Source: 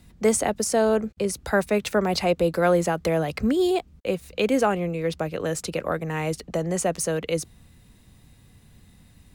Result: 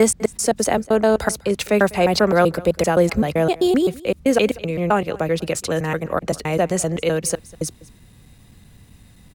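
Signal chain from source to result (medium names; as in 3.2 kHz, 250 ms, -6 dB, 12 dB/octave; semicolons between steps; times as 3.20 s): slices played last to first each 129 ms, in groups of 3; delay 199 ms -21.5 dB; trim +5 dB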